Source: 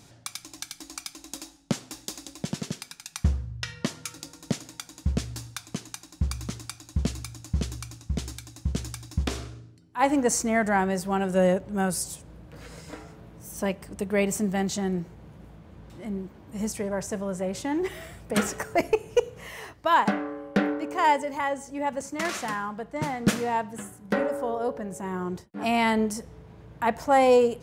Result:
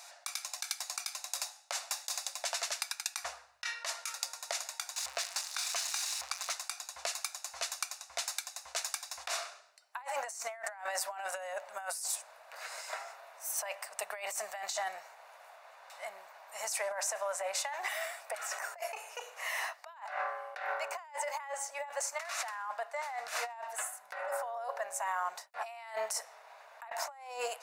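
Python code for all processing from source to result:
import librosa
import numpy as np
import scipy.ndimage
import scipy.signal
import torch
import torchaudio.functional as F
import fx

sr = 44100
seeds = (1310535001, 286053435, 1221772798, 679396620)

y = fx.chain(x, sr, fx.crossing_spikes(level_db=-25.5),
    fx.air_absorb(metres=75.0), at=(4.96, 6.52))
y = scipy.signal.sosfilt(scipy.signal.ellip(4, 1.0, 50, 650.0, 'highpass', fs=sr, output='sos'), y)
y = fx.notch(y, sr, hz=3200.0, q=7.3)
y = fx.over_compress(y, sr, threshold_db=-39.0, ratio=-1.0)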